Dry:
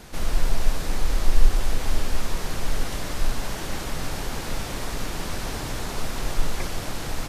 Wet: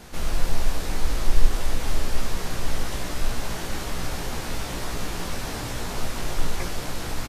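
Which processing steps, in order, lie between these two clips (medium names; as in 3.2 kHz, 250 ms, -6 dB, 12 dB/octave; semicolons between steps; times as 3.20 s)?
doubling 17 ms -5.5 dB; trim -1 dB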